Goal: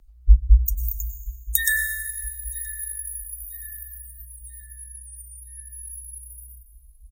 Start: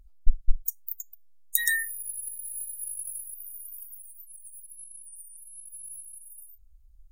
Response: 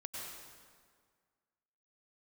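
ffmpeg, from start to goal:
-filter_complex "[0:a]afreqshift=-62,asplit=2[link_01][link_02];[link_02]adelay=973,lowpass=frequency=3600:poles=1,volume=-19.5dB,asplit=2[link_03][link_04];[link_04]adelay=973,lowpass=frequency=3600:poles=1,volume=0.5,asplit=2[link_05][link_06];[link_06]adelay=973,lowpass=frequency=3600:poles=1,volume=0.5,asplit=2[link_07][link_08];[link_08]adelay=973,lowpass=frequency=3600:poles=1,volume=0.5[link_09];[link_01][link_03][link_05][link_07][link_09]amix=inputs=5:normalize=0,asplit=2[link_10][link_11];[1:a]atrim=start_sample=2205[link_12];[link_11][link_12]afir=irnorm=-1:irlink=0,volume=-0.5dB[link_13];[link_10][link_13]amix=inputs=2:normalize=0"

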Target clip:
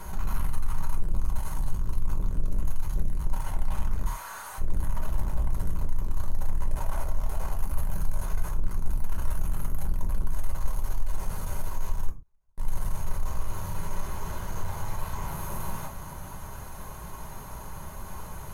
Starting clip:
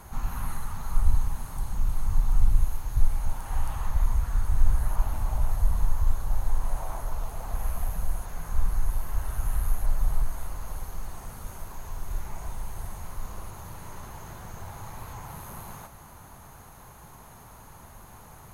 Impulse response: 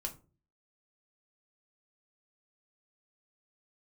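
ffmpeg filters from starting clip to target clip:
-filter_complex "[0:a]asplit=3[link_01][link_02][link_03];[link_01]afade=type=out:start_time=4.05:duration=0.02[link_04];[link_02]highpass=780,afade=type=in:start_time=4.05:duration=0.02,afade=type=out:start_time=4.58:duration=0.02[link_05];[link_03]afade=type=in:start_time=4.58:duration=0.02[link_06];[link_04][link_05][link_06]amix=inputs=3:normalize=0,aeval=exprs='(tanh(63.1*val(0)+0.25)-tanh(0.25))/63.1':channel_layout=same,asettb=1/sr,asplit=3[link_07][link_08][link_09];[link_07]atrim=end=12.094[link_10];[link_08]atrim=start=12.09:end=12.58,asetpts=PTS-STARTPTS,afade=type=in:duration=0.004:curve=qsin,afade=type=out:start_time=0.486:duration=0.004:curve=qsin,agate=range=-47dB:threshold=-32dB:ratio=16:detection=peak[link_11];[link_09]atrim=start=12.576[link_12];[link_10][link_11]acrossfade=duration=0.004:curve1=hsin:curve2=qsin[link_13];[link_13][link_12]acrossfade=duration=0.004:curve1=qsin:curve2=hsin[link_14];[1:a]atrim=start_sample=2205,atrim=end_sample=6174[link_15];[link_14][link_15]afir=irnorm=-1:irlink=0,volume=7.5dB"

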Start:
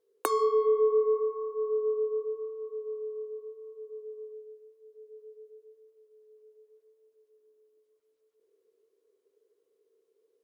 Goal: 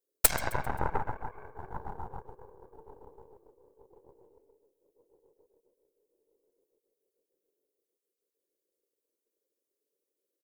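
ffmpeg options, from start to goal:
ffmpeg -i in.wav -af "afftfilt=real='hypot(re,im)*cos(2*PI*random(0))':imag='hypot(re,im)*sin(2*PI*random(1))':win_size=512:overlap=0.75,crystalizer=i=7:c=0,aeval=exprs='0.422*(cos(1*acos(clip(val(0)/0.422,-1,1)))-cos(1*PI/2))+0.0944*(cos(3*acos(clip(val(0)/0.422,-1,1)))-cos(3*PI/2))+0.0944*(cos(5*acos(clip(val(0)/0.422,-1,1)))-cos(5*PI/2))+0.0944*(cos(7*acos(clip(val(0)/0.422,-1,1)))-cos(7*PI/2))+0.0422*(cos(8*acos(clip(val(0)/0.422,-1,1)))-cos(8*PI/2))':channel_layout=same,aecho=1:1:132|264|396|528:0.1|0.049|0.024|0.0118,volume=5.5dB" out.wav

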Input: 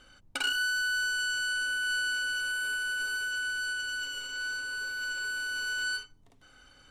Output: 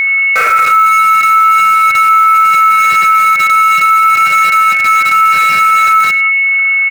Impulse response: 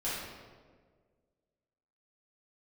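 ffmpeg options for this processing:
-filter_complex "[0:a]lowpass=frequency=2400:width_type=q:width=0.5098,lowpass=frequency=2400:width_type=q:width=0.6013,lowpass=frequency=2400:width_type=q:width=0.9,lowpass=frequency=2400:width_type=q:width=2.563,afreqshift=-2800,highpass=740[link_01];[1:a]atrim=start_sample=2205,afade=type=out:start_time=0.4:duration=0.01,atrim=end_sample=18081[link_02];[link_01][link_02]afir=irnorm=-1:irlink=0,asplit=2[link_03][link_04];[link_04]acrusher=bits=5:mix=0:aa=0.000001,volume=-7dB[link_05];[link_03][link_05]amix=inputs=2:normalize=0,aeval=exprs='val(0)+0.0224*sin(2*PI*2200*n/s)':channel_layout=same,aecho=1:1:100:0.119,alimiter=level_in=25.5dB:limit=-1dB:release=50:level=0:latency=1,volume=-1dB"

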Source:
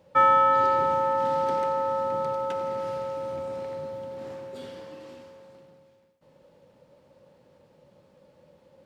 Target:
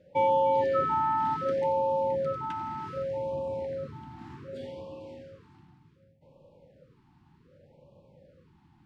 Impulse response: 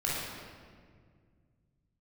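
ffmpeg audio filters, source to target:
-filter_complex "[0:a]lowpass=frequency=2400:poles=1,asplit=2[link_01][link_02];[link_02]asubboost=boost=12:cutoff=130[link_03];[1:a]atrim=start_sample=2205,adelay=11[link_04];[link_03][link_04]afir=irnorm=-1:irlink=0,volume=-24.5dB[link_05];[link_01][link_05]amix=inputs=2:normalize=0,afftfilt=real='re*(1-between(b*sr/1024,490*pow(1700/490,0.5+0.5*sin(2*PI*0.66*pts/sr))/1.41,490*pow(1700/490,0.5+0.5*sin(2*PI*0.66*pts/sr))*1.41))':imag='im*(1-between(b*sr/1024,490*pow(1700/490,0.5+0.5*sin(2*PI*0.66*pts/sr))/1.41,490*pow(1700/490,0.5+0.5*sin(2*PI*0.66*pts/sr))*1.41))':win_size=1024:overlap=0.75"

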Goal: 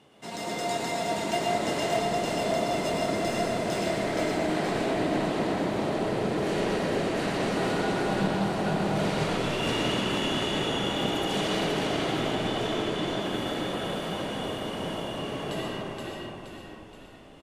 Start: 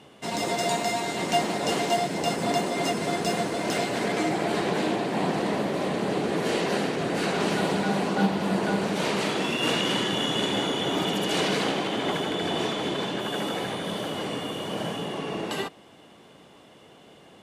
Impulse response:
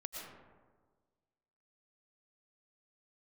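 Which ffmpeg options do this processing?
-filter_complex "[0:a]asplit=7[link_01][link_02][link_03][link_04][link_05][link_06][link_07];[link_02]adelay=473,afreqshift=-41,volume=-3.5dB[link_08];[link_03]adelay=946,afreqshift=-82,volume=-9.9dB[link_09];[link_04]adelay=1419,afreqshift=-123,volume=-16.3dB[link_10];[link_05]adelay=1892,afreqshift=-164,volume=-22.6dB[link_11];[link_06]adelay=2365,afreqshift=-205,volume=-29dB[link_12];[link_07]adelay=2838,afreqshift=-246,volume=-35.4dB[link_13];[link_01][link_08][link_09][link_10][link_11][link_12][link_13]amix=inputs=7:normalize=0[link_14];[1:a]atrim=start_sample=2205[link_15];[link_14][link_15]afir=irnorm=-1:irlink=0,volume=-2.5dB"

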